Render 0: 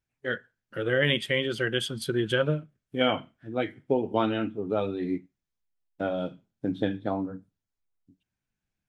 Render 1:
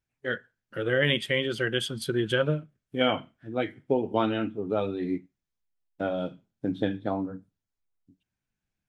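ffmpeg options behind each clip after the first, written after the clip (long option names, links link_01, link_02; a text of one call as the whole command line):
ffmpeg -i in.wav -af anull out.wav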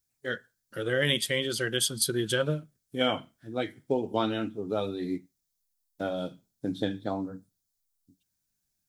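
ffmpeg -i in.wav -af "aexciter=amount=5.8:drive=3.4:freq=3900,volume=-2.5dB" out.wav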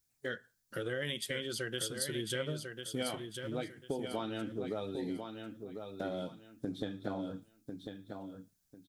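ffmpeg -i in.wav -af "acompressor=threshold=-37dB:ratio=4,aecho=1:1:1047|2094|3141:0.473|0.118|0.0296,volume=1dB" out.wav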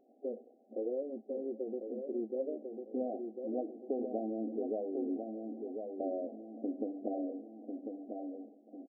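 ffmpeg -i in.wav -af "aeval=exprs='val(0)+0.5*0.00631*sgn(val(0))':channel_layout=same,afftfilt=real='re*between(b*sr/4096,210,800)':imag='im*between(b*sr/4096,210,800)':win_size=4096:overlap=0.75,aecho=1:1:568|1136|1704|2272:0.106|0.0561|0.0298|0.0158,volume=1dB" out.wav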